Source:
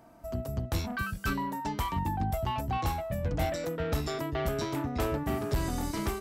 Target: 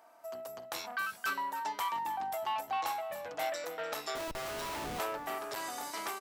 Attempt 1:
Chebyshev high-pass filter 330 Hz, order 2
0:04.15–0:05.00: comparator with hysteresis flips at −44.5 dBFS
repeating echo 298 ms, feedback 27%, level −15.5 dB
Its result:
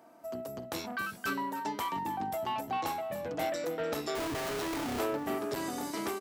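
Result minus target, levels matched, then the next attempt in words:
250 Hz band +11.0 dB
Chebyshev high-pass filter 790 Hz, order 2
0:04.15–0:05.00: comparator with hysteresis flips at −44.5 dBFS
repeating echo 298 ms, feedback 27%, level −15.5 dB

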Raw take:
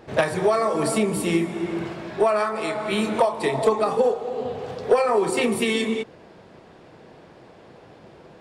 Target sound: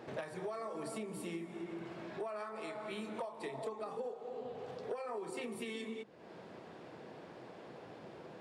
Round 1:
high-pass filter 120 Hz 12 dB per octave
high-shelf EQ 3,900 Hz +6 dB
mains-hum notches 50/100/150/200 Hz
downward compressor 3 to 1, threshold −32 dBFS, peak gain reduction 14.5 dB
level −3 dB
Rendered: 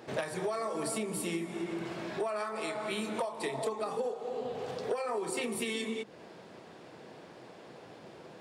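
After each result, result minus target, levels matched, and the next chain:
downward compressor: peak gain reduction −7 dB; 8,000 Hz band +5.5 dB
high-pass filter 120 Hz 12 dB per octave
high-shelf EQ 3,900 Hz +6 dB
mains-hum notches 50/100/150/200 Hz
downward compressor 3 to 1, threshold −43 dBFS, peak gain reduction 22 dB
level −3 dB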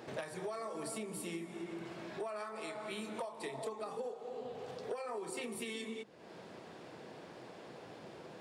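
8,000 Hz band +6.5 dB
high-pass filter 120 Hz 12 dB per octave
high-shelf EQ 3,900 Hz −3 dB
mains-hum notches 50/100/150/200 Hz
downward compressor 3 to 1, threshold −43 dBFS, peak gain reduction 21.5 dB
level −3 dB

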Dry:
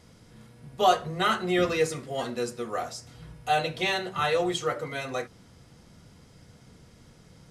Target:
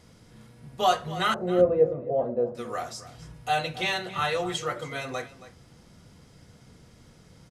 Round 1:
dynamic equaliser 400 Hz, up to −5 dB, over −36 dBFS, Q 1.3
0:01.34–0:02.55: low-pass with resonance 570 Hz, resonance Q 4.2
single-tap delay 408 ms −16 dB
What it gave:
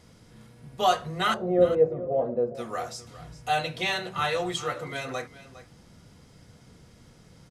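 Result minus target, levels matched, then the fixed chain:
echo 134 ms late
dynamic equaliser 400 Hz, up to −5 dB, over −36 dBFS, Q 1.3
0:01.34–0:02.55: low-pass with resonance 570 Hz, resonance Q 4.2
single-tap delay 274 ms −16 dB

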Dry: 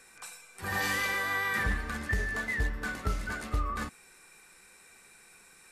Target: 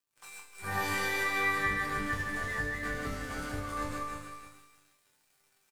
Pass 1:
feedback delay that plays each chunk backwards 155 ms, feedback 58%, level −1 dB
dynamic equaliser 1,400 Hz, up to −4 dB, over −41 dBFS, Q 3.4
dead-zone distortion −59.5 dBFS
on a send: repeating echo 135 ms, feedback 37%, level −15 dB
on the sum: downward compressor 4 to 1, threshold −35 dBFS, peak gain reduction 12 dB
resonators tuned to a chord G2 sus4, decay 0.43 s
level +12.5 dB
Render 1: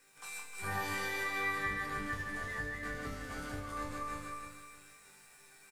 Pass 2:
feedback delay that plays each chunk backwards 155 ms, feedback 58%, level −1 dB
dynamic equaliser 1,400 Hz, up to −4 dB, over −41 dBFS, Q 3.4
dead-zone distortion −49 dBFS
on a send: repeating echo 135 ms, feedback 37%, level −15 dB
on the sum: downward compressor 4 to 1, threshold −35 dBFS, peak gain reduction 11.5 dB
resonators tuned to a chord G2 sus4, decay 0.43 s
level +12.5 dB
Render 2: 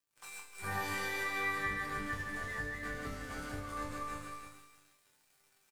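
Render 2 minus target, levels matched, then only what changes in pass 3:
downward compressor: peak gain reduction +5.5 dB
change: downward compressor 4 to 1, threshold −27.5 dBFS, peak gain reduction 6 dB

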